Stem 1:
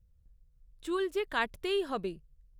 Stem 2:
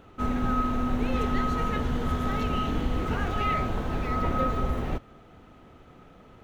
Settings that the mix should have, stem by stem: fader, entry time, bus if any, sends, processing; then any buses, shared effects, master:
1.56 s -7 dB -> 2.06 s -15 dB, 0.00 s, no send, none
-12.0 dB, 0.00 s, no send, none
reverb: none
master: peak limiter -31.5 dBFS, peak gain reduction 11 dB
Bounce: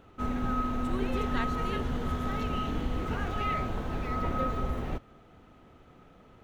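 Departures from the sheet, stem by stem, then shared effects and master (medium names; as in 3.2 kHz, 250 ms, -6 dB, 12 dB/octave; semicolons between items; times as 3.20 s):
stem 2 -12.0 dB -> -4.0 dB; master: missing peak limiter -31.5 dBFS, peak gain reduction 11 dB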